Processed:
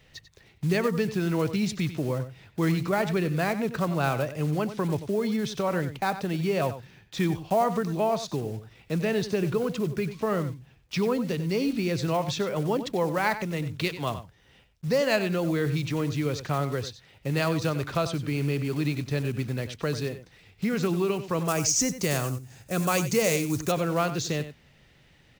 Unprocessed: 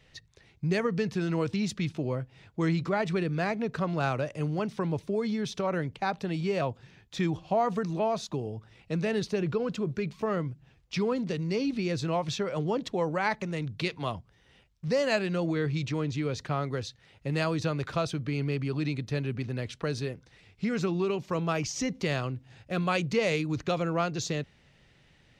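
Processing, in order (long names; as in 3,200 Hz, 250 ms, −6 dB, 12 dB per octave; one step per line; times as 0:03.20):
one scale factor per block 5 bits
0:21.48–0:23.72: high shelf with overshoot 5,000 Hz +10 dB, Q 1.5
slap from a distant wall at 16 metres, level −12 dB
level +2.5 dB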